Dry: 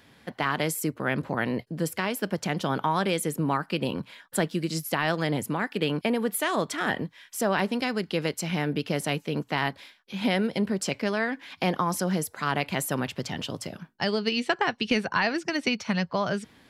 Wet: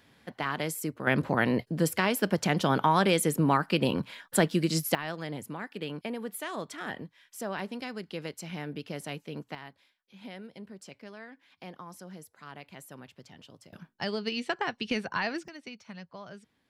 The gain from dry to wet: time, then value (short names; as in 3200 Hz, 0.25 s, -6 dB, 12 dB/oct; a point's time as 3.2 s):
-5 dB
from 1.07 s +2 dB
from 4.95 s -10 dB
from 9.55 s -19 dB
from 13.73 s -6 dB
from 15.48 s -18 dB